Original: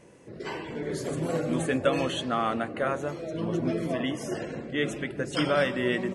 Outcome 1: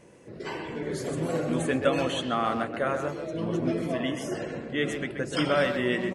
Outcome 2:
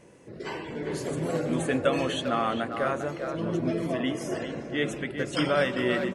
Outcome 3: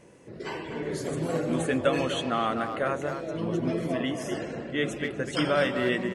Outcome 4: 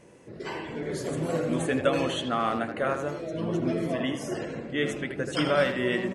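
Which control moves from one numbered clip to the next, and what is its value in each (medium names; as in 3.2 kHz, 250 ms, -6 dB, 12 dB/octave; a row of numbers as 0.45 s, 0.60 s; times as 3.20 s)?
speakerphone echo, time: 130 ms, 400 ms, 250 ms, 80 ms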